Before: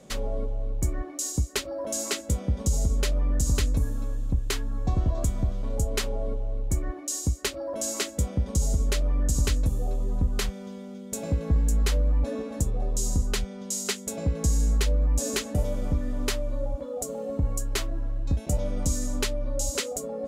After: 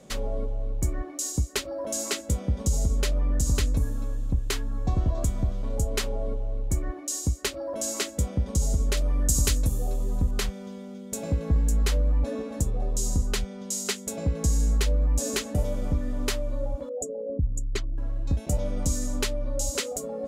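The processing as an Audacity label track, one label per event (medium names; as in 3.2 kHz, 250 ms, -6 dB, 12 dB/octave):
8.970000	10.310000	treble shelf 5.4 kHz +11 dB
16.890000	17.980000	resonances exaggerated exponent 2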